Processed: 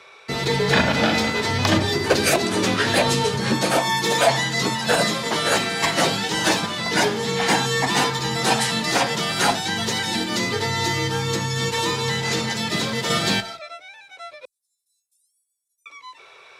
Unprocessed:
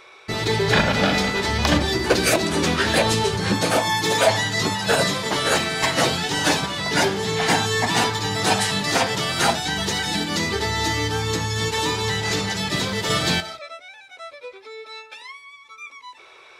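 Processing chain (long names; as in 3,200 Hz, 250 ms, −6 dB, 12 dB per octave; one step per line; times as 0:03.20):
0:14.45–0:15.86: inverse Chebyshev high-pass filter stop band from 1,900 Hz, stop band 80 dB
frequency shifter +25 Hz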